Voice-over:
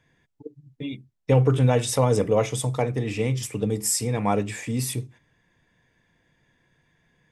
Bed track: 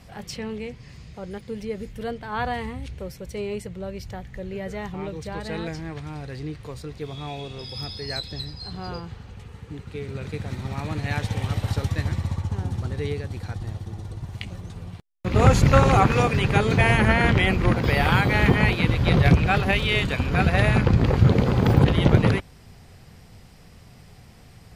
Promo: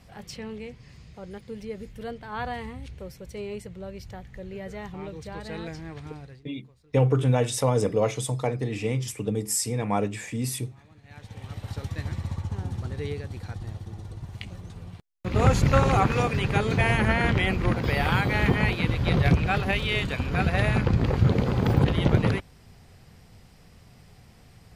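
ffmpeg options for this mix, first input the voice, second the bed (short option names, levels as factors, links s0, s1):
-filter_complex "[0:a]adelay=5650,volume=0.75[s0];[1:a]volume=6.68,afade=t=out:st=6.07:d=0.37:silence=0.0944061,afade=t=in:st=11.04:d=1.35:silence=0.0841395[s1];[s0][s1]amix=inputs=2:normalize=0"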